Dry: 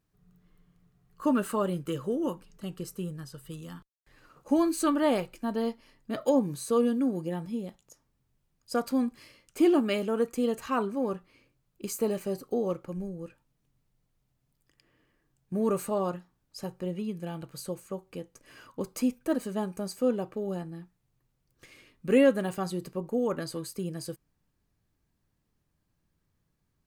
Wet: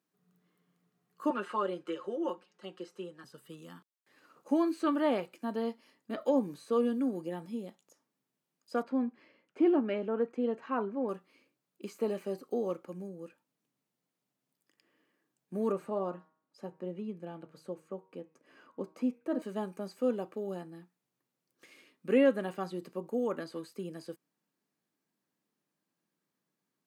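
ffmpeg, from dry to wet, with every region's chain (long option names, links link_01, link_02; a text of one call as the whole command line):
ffmpeg -i in.wav -filter_complex "[0:a]asettb=1/sr,asplit=3[link_01][link_02][link_03];[link_01]atrim=end=1.304[link_04];[link_02]atrim=start=1.3:end=3.24,asetpts=PTS-STARTPTS,afade=type=in:duration=0.004:curve=qsin,afade=type=out:start_time=1.936:duration=0.004:curve=qsin,highpass=370,lowpass=4500,aecho=1:1:5.6:0.82,atrim=end_sample=85554[link_05];[link_03]atrim=start=3.236[link_06];[link_04][link_05]acrossfade=duration=0.004:curve1=hsin:curve2=qsin[link_07];[link_07][link_06]acrossfade=duration=0.004:curve1=qsin:curve2=hsin,asettb=1/sr,asplit=3[link_08][link_09][link_10];[link_08]atrim=end=8.834[link_11];[link_09]atrim=start=8.83:end=11.09,asetpts=PTS-STARTPTS,afade=type=in:duration=0.004:curve=qsin,afade=type=out:start_time=2.256:duration=0.004:curve=qsin,lowpass=1900,bandreject=frequency=1200:width=13[link_12];[link_10]atrim=start=11.086[link_13];[link_11][link_12]acrossfade=duration=0.004:curve1=hsin:curve2=qsin[link_14];[link_14][link_13]acrossfade=duration=0.004:curve1=qsin:curve2=hsin,asettb=1/sr,asplit=3[link_15][link_16][link_17];[link_15]atrim=end=15.724[link_18];[link_16]atrim=start=15.72:end=19.42,asetpts=PTS-STARTPTS,afade=type=in:duration=0.004:curve=qsin,afade=type=out:start_time=3.696:duration=0.004:curve=qsin,lowpass=frequency=1300:poles=1,bandreject=frequency=157.5:width_type=h:width=4,bandreject=frequency=315:width_type=h:width=4,bandreject=frequency=472.5:width_type=h:width=4,bandreject=frequency=630:width_type=h:width=4,bandreject=frequency=787.5:width_type=h:width=4,bandreject=frequency=945:width_type=h:width=4,bandreject=frequency=1102.5:width_type=h:width=4,bandreject=frequency=1260:width_type=h:width=4,bandreject=frequency=1417.5:width_type=h:width=4,bandreject=frequency=1575:width_type=h:width=4,bandreject=frequency=1732.5:width_type=h:width=4,bandreject=frequency=1890:width_type=h:width=4,bandreject=frequency=2047.5:width_type=h:width=4,bandreject=frequency=2205:width_type=h:width=4,bandreject=frequency=2362.5:width_type=h:width=4,bandreject=frequency=2520:width_type=h:width=4,bandreject=frequency=2677.5:width_type=h:width=4[link_19];[link_17]atrim=start=19.416[link_20];[link_18][link_19]acrossfade=duration=0.004:curve1=hsin:curve2=qsin[link_21];[link_21][link_20]acrossfade=duration=0.004:curve1=qsin:curve2=hsin,acrossover=split=3900[link_22][link_23];[link_23]acompressor=threshold=-57dB:ratio=4:attack=1:release=60[link_24];[link_22][link_24]amix=inputs=2:normalize=0,highpass=frequency=200:width=0.5412,highpass=frequency=200:width=1.3066,volume=-3.5dB" out.wav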